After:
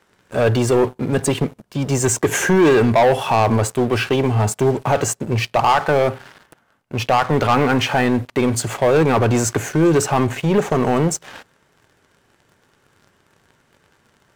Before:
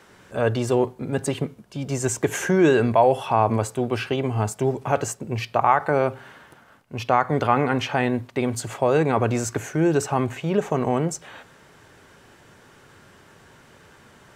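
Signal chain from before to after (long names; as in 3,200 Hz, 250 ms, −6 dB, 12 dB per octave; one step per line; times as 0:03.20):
leveller curve on the samples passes 3
level −3 dB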